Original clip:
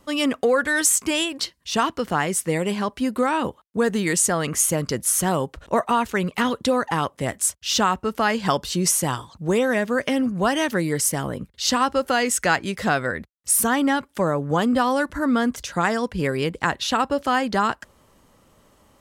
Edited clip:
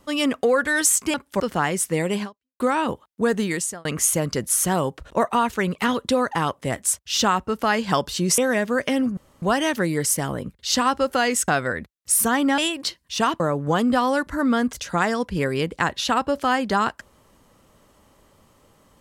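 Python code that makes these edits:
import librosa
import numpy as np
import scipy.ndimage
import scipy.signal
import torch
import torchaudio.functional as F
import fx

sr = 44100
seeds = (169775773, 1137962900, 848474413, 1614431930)

y = fx.edit(x, sr, fx.swap(start_s=1.14, length_s=0.82, other_s=13.97, other_length_s=0.26),
    fx.fade_out_span(start_s=2.79, length_s=0.37, curve='exp'),
    fx.fade_out_span(start_s=3.96, length_s=0.45),
    fx.cut(start_s=8.94, length_s=0.64),
    fx.insert_room_tone(at_s=10.37, length_s=0.25),
    fx.cut(start_s=12.43, length_s=0.44), tone=tone)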